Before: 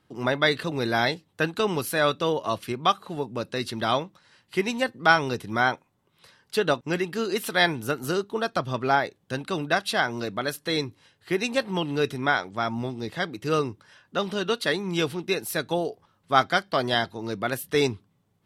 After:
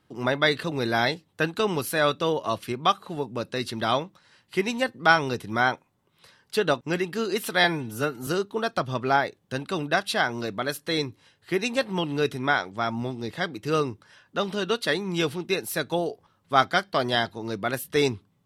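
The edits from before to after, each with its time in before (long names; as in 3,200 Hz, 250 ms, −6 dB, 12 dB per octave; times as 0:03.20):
0:07.64–0:08.06: time-stretch 1.5×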